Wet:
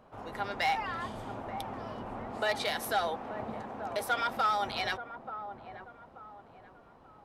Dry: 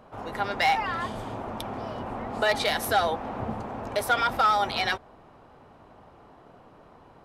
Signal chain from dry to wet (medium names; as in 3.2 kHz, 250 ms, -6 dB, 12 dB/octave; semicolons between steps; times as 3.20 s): 2.37–4.64 s: bass shelf 110 Hz -10.5 dB; feedback echo behind a low-pass 883 ms, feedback 33%, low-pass 1.2 kHz, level -9.5 dB; trim -6.5 dB